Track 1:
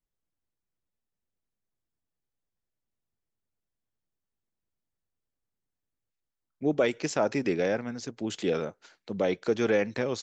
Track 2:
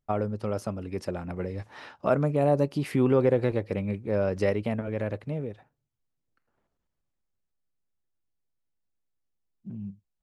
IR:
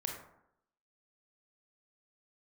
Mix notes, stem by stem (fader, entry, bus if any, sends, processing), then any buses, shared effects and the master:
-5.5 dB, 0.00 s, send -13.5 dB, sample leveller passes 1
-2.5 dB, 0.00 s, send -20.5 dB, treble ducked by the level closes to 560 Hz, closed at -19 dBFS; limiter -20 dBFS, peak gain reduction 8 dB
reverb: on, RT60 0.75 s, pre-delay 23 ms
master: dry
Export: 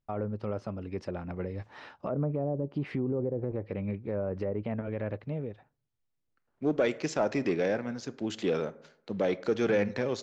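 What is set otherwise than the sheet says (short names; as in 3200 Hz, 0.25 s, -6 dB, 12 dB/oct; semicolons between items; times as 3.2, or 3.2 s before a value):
stem 2: send off; master: extra air absorption 61 m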